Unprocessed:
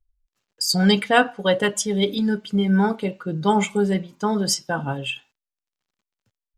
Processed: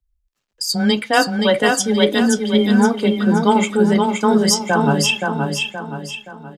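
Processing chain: gain riding 0.5 s; feedback delay 523 ms, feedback 42%, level -4 dB; frequency shift +14 Hz; trim +4 dB

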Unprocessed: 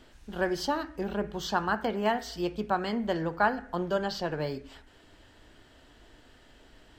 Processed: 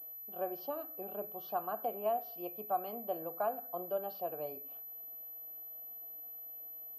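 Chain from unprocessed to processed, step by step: vowel filter a; high-order bell 1.7 kHz -9.5 dB 2.7 oct; class-D stage that switches slowly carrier 12 kHz; trim +6 dB

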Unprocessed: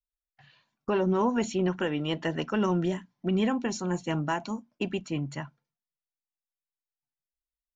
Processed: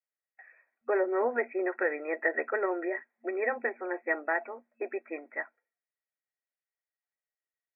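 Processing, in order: FFT band-pass 230–2600 Hz; static phaser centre 1 kHz, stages 6; small resonant body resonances 1/1.9 kHz, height 15 dB, ringing for 60 ms; trim +3 dB

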